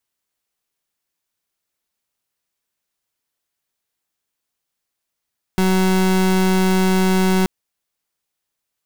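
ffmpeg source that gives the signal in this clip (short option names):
-f lavfi -i "aevalsrc='0.168*(2*lt(mod(187*t,1),0.31)-1)':d=1.88:s=44100"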